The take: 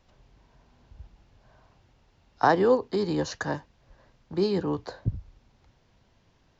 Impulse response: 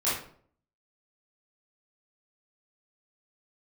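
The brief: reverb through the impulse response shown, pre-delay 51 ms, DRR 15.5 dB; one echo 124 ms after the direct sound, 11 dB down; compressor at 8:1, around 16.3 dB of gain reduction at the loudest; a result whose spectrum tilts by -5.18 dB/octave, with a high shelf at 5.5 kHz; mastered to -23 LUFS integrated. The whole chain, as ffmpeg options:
-filter_complex "[0:a]highshelf=f=5500:g=8,acompressor=threshold=0.0224:ratio=8,aecho=1:1:124:0.282,asplit=2[s0][s1];[1:a]atrim=start_sample=2205,adelay=51[s2];[s1][s2]afir=irnorm=-1:irlink=0,volume=0.0531[s3];[s0][s3]amix=inputs=2:normalize=0,volume=5.96"

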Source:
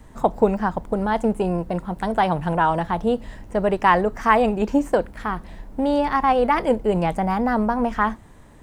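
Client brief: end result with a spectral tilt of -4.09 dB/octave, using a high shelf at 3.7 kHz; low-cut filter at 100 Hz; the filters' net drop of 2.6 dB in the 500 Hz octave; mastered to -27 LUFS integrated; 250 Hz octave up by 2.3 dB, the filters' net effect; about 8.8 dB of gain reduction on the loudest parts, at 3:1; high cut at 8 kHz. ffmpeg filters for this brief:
-af "highpass=100,lowpass=8000,equalizer=f=250:t=o:g=4,equalizer=f=500:t=o:g=-4,highshelf=f=3700:g=-7.5,acompressor=threshold=0.0631:ratio=3,volume=1.06"

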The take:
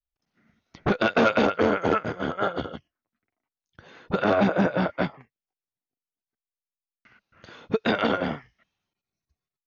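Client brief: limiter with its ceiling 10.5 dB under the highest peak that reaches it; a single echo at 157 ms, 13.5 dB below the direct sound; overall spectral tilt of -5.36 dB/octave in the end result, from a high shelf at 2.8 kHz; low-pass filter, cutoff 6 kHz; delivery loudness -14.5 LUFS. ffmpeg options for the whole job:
-af "lowpass=6000,highshelf=f=2800:g=-9,alimiter=limit=0.0841:level=0:latency=1,aecho=1:1:157:0.211,volume=7.94"

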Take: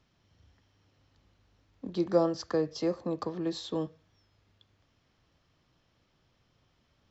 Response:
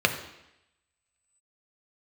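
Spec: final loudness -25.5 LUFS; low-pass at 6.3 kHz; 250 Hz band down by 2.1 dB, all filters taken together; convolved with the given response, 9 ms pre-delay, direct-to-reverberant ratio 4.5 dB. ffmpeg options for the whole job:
-filter_complex "[0:a]lowpass=6300,equalizer=f=250:t=o:g=-3.5,asplit=2[s0][s1];[1:a]atrim=start_sample=2205,adelay=9[s2];[s1][s2]afir=irnorm=-1:irlink=0,volume=0.1[s3];[s0][s3]amix=inputs=2:normalize=0,volume=2"

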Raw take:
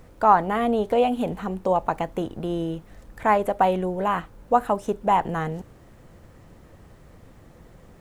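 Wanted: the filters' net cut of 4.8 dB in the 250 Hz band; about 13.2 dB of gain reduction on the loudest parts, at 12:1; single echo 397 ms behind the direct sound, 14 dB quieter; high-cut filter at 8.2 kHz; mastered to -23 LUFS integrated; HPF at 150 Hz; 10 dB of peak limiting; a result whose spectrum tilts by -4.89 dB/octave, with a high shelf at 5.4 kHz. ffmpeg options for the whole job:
-af "highpass=150,lowpass=8200,equalizer=f=250:t=o:g=-5.5,highshelf=f=5400:g=8.5,acompressor=threshold=0.0631:ratio=12,alimiter=limit=0.0794:level=0:latency=1,aecho=1:1:397:0.2,volume=3.35"

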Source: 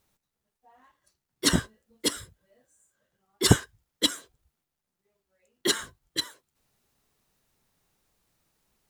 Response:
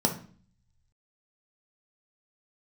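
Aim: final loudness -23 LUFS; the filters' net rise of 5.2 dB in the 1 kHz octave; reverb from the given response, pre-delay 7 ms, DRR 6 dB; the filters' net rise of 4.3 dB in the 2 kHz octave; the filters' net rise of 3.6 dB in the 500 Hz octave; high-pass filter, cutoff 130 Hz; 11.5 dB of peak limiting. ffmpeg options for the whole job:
-filter_complex "[0:a]highpass=130,equalizer=f=500:t=o:g=4,equalizer=f=1000:t=o:g=4.5,equalizer=f=2000:t=o:g=3.5,alimiter=limit=0.237:level=0:latency=1,asplit=2[s0][s1];[1:a]atrim=start_sample=2205,adelay=7[s2];[s1][s2]afir=irnorm=-1:irlink=0,volume=0.15[s3];[s0][s3]amix=inputs=2:normalize=0,volume=1.88"

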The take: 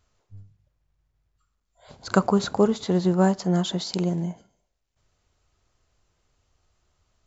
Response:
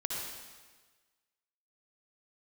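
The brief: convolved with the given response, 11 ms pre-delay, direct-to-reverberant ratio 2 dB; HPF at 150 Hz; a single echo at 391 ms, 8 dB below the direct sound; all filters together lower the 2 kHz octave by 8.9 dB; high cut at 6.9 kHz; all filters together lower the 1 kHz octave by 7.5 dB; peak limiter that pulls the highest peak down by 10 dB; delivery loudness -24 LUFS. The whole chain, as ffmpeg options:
-filter_complex "[0:a]highpass=150,lowpass=6900,equalizer=f=1000:t=o:g=-9,equalizer=f=2000:t=o:g=-8.5,alimiter=limit=0.119:level=0:latency=1,aecho=1:1:391:0.398,asplit=2[s0][s1];[1:a]atrim=start_sample=2205,adelay=11[s2];[s1][s2]afir=irnorm=-1:irlink=0,volume=0.531[s3];[s0][s3]amix=inputs=2:normalize=0,volume=1.26"

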